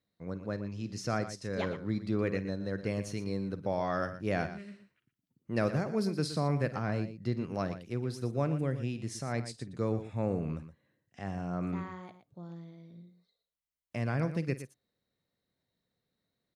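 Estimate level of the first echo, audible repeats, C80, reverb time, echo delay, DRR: -16.0 dB, 2, no reverb, no reverb, 51 ms, no reverb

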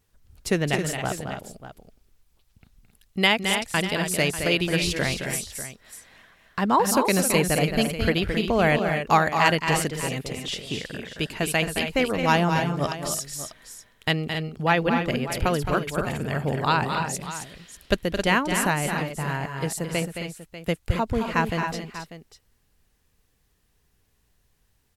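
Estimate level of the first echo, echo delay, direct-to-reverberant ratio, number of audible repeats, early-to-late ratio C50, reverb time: -7.5 dB, 218 ms, no reverb, 3, no reverb, no reverb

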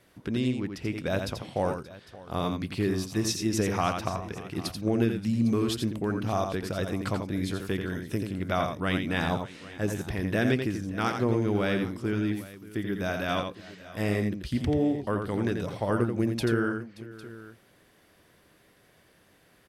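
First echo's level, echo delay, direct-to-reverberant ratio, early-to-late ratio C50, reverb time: -6.0 dB, 86 ms, no reverb, no reverb, no reverb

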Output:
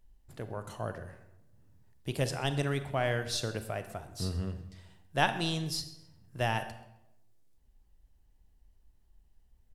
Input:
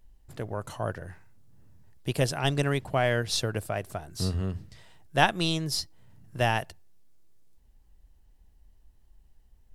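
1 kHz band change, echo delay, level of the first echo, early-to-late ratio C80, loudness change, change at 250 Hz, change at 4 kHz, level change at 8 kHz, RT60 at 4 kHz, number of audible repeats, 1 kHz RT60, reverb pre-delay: -5.0 dB, 131 ms, -20.5 dB, 13.0 dB, -5.0 dB, -4.5 dB, -5.0 dB, -5.0 dB, 0.65 s, 1, 0.80 s, 28 ms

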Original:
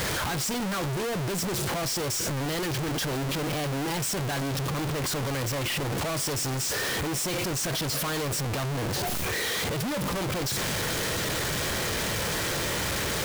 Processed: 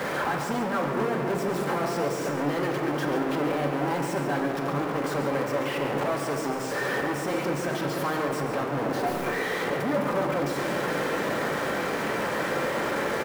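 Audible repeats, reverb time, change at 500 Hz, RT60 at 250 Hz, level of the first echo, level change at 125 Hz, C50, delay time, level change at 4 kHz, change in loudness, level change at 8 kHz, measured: 1, 2.6 s, +5.5 dB, 3.5 s, -8.5 dB, -4.0 dB, 3.0 dB, 138 ms, -8.5 dB, +0.5 dB, -11.5 dB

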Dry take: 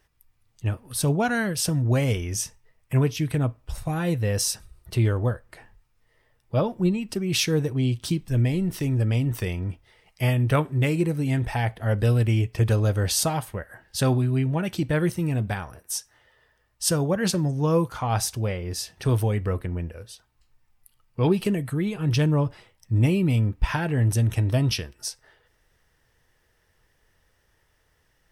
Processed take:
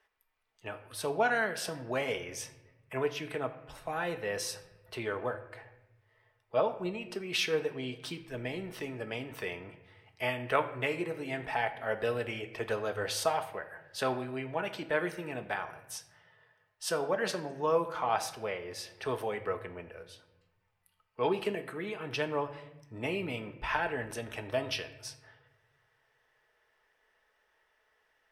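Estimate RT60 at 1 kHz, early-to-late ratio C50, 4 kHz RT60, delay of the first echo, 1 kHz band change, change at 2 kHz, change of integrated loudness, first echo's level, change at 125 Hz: 0.85 s, 13.0 dB, 0.65 s, no echo, -1.5 dB, -2.0 dB, -10.0 dB, no echo, -23.0 dB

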